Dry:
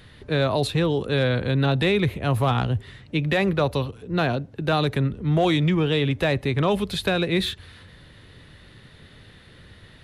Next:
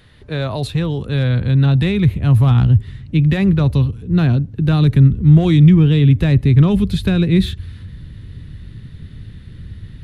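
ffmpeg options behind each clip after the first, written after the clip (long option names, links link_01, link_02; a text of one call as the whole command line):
ffmpeg -i in.wav -af "asubboost=boost=10:cutoff=200,volume=-1dB" out.wav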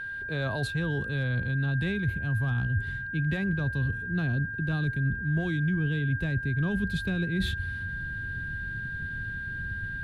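ffmpeg -i in.wav -af "areverse,acompressor=threshold=-21dB:ratio=6,areverse,aeval=exprs='val(0)+0.0398*sin(2*PI*1600*n/s)':channel_layout=same,volume=-5.5dB" out.wav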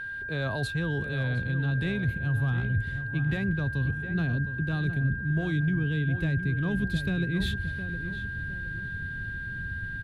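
ffmpeg -i in.wav -filter_complex "[0:a]asplit=2[link_01][link_02];[link_02]adelay=712,lowpass=frequency=2100:poles=1,volume=-9.5dB,asplit=2[link_03][link_04];[link_04]adelay=712,lowpass=frequency=2100:poles=1,volume=0.39,asplit=2[link_05][link_06];[link_06]adelay=712,lowpass=frequency=2100:poles=1,volume=0.39,asplit=2[link_07][link_08];[link_08]adelay=712,lowpass=frequency=2100:poles=1,volume=0.39[link_09];[link_01][link_03][link_05][link_07][link_09]amix=inputs=5:normalize=0" out.wav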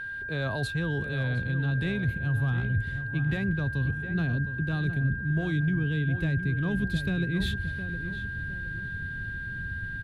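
ffmpeg -i in.wav -af anull out.wav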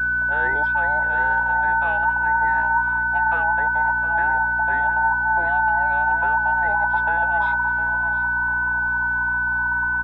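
ffmpeg -i in.wav -af "afftfilt=real='real(if(between(b,1,1008),(2*floor((b-1)/48)+1)*48-b,b),0)':imag='imag(if(between(b,1,1008),(2*floor((b-1)/48)+1)*48-b,b),0)*if(between(b,1,1008),-1,1)':win_size=2048:overlap=0.75,lowpass=frequency=1600:width_type=q:width=5.5,aeval=exprs='val(0)+0.0141*(sin(2*PI*60*n/s)+sin(2*PI*2*60*n/s)/2+sin(2*PI*3*60*n/s)/3+sin(2*PI*4*60*n/s)/4+sin(2*PI*5*60*n/s)/5)':channel_layout=same,volume=1.5dB" out.wav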